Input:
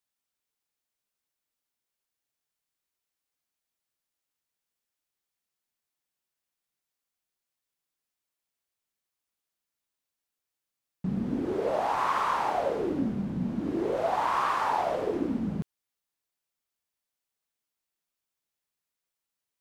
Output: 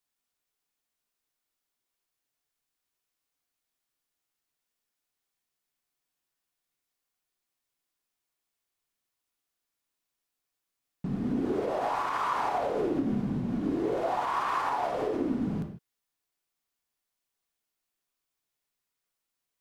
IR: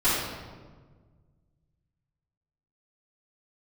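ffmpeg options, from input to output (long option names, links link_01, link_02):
-filter_complex "[0:a]alimiter=limit=-23.5dB:level=0:latency=1:release=80,asplit=2[link_01][link_02];[1:a]atrim=start_sample=2205,afade=type=out:start_time=0.21:duration=0.01,atrim=end_sample=9702[link_03];[link_02][link_03]afir=irnorm=-1:irlink=0,volume=-18dB[link_04];[link_01][link_04]amix=inputs=2:normalize=0"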